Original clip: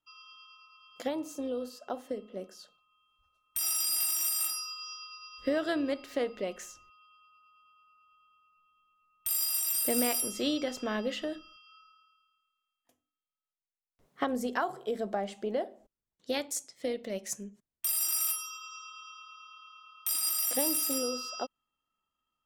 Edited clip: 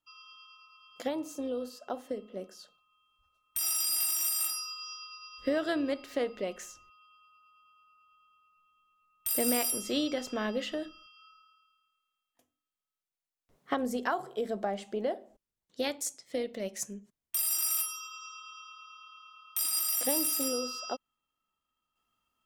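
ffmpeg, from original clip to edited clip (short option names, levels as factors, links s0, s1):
-filter_complex "[0:a]asplit=2[s0][s1];[s0]atrim=end=9.322[s2];[s1]atrim=start=9.818[s3];[s2][s3]acrossfade=d=0.004:c1=hsin:c2=hsin"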